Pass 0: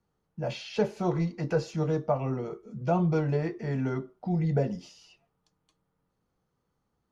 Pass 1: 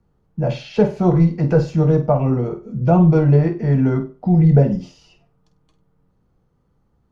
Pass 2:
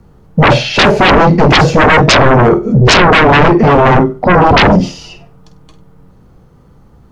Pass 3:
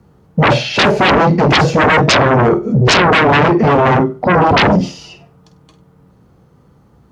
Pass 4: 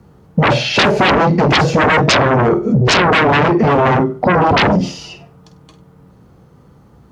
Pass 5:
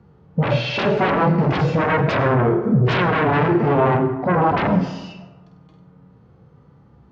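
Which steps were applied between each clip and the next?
spectral tilt −2.5 dB per octave; on a send: flutter between parallel walls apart 8.4 metres, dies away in 0.28 s; on the sum: level +7.5 dB
dynamic equaliser 670 Hz, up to +5 dB, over −30 dBFS, Q 1.1; sine wavefolder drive 19 dB, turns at −0.5 dBFS; on a send at −24 dB: convolution reverb RT60 0.50 s, pre-delay 7 ms; on the sum: level −2.5 dB
high-pass filter 77 Hz; level −3.5 dB
downward compressor, threshold −12 dBFS, peak gain reduction 5.5 dB; level +3 dB
low-pass filter 3,600 Hz 12 dB per octave; harmonic and percussive parts rebalanced percussive −14 dB; dense smooth reverb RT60 1.1 s, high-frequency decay 0.45×, pre-delay 80 ms, DRR 11 dB; level −2.5 dB

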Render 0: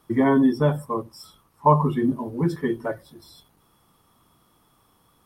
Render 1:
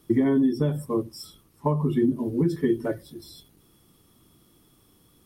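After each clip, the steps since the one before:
parametric band 980 Hz −12.5 dB 1.7 octaves
downward compressor 6 to 1, threshold −25 dBFS, peak gain reduction 9.5 dB
parametric band 340 Hz +5.5 dB 0.72 octaves
level +4 dB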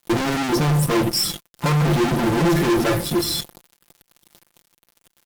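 fuzz pedal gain 48 dB, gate −51 dBFS
comb filter 5.8 ms, depth 54%
level −5.5 dB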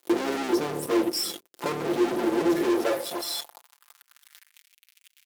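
sub-octave generator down 2 octaves, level +3 dB
downward compressor 1.5 to 1, threshold −39 dBFS, peak gain reduction 10 dB
high-pass filter sweep 370 Hz → 2,400 Hz, 0:02.62–0:04.74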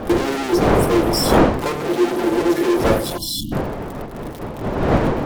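wind on the microphone 540 Hz −27 dBFS
time-frequency box erased 0:03.18–0:03.52, 340–2,800 Hz
hum removal 83.95 Hz, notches 13
level +6.5 dB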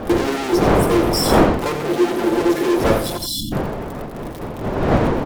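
single-tap delay 87 ms −10 dB

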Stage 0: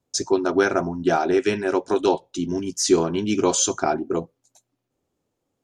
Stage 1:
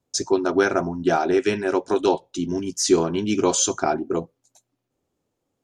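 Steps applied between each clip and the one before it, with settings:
no processing that can be heard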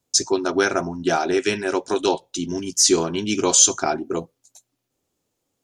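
high-shelf EQ 2,400 Hz +10.5 dB
level −1.5 dB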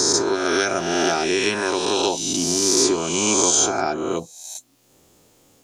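peak hold with a rise ahead of every peak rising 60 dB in 1.47 s
multiband upward and downward compressor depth 70%
level −4 dB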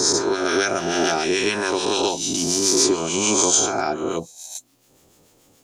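two-band tremolo in antiphase 6.9 Hz, depth 50%, crossover 970 Hz
level +2 dB

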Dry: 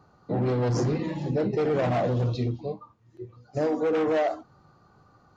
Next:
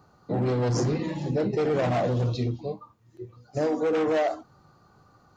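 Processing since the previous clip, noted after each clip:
high-shelf EQ 6,100 Hz +8.5 dB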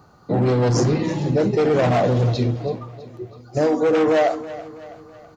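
repeating echo 326 ms, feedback 49%, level −16 dB
level +7 dB

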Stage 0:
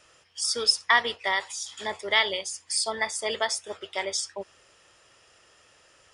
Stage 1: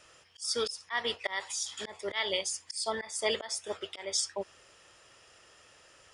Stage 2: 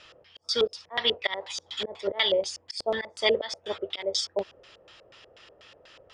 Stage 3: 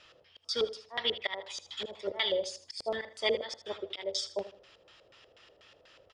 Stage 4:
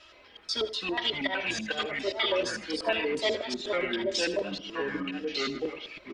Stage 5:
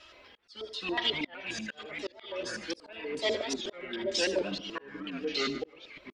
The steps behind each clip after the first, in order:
volume swells 235 ms
auto-filter low-pass square 4.1 Hz 550–3,800 Hz; level +4 dB
repeating echo 79 ms, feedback 31%, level −14.5 dB; level −6 dB
comb filter 3.1 ms, depth 95%; in parallel at −2.5 dB: brickwall limiter −24 dBFS, peak gain reduction 9.5 dB; on the sum: delay with pitch and tempo change per echo 121 ms, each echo −4 semitones, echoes 3; level −3.5 dB
single-tap delay 147 ms −23.5 dB; volume swells 510 ms; wow of a warped record 78 rpm, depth 160 cents

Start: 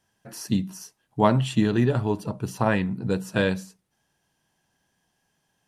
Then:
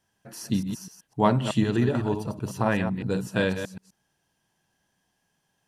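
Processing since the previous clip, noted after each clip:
delay that plays each chunk backwards 126 ms, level −7.5 dB
level −2 dB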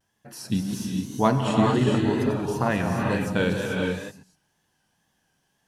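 tape wow and flutter 99 cents
reverb whose tail is shaped and stops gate 470 ms rising, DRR 0.5 dB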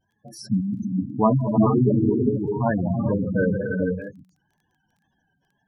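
gate on every frequency bin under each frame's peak −10 dB strong
high-shelf EQ 9,200 Hz −4 dB
surface crackle 11 per second −53 dBFS
level +3.5 dB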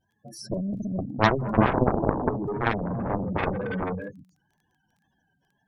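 harmonic generator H 2 −7 dB, 3 −14 dB, 7 −14 dB, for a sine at −6 dBFS
level −1 dB

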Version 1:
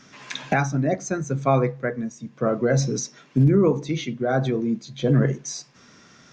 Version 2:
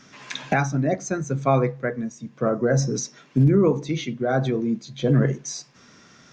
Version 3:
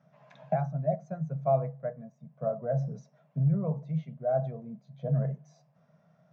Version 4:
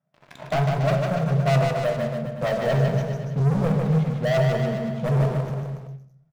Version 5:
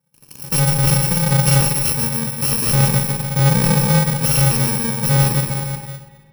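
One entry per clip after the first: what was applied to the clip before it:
gain on a spectral selection 0:02.49–0:02.94, 2,000–4,900 Hz −9 dB
pair of resonant band-passes 320 Hz, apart 2 octaves
leveller curve on the samples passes 5; on a send: bouncing-ball delay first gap 150 ms, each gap 0.9×, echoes 5; on the sum: rectangular room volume 87 cubic metres, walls mixed, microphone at 0.32 metres; level −4.5 dB
samples in bit-reversed order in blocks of 64 samples; spring reverb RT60 2 s, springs 53 ms, chirp 45 ms, DRR 10.5 dB; slew-rate limiting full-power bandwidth 850 Hz; level +6.5 dB

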